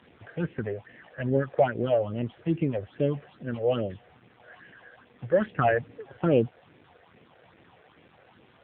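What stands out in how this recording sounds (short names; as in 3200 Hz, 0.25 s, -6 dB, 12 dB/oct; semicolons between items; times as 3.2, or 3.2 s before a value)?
phasing stages 6, 2.4 Hz, lowest notch 240–1200 Hz; a quantiser's noise floor 10-bit, dither none; AMR-NB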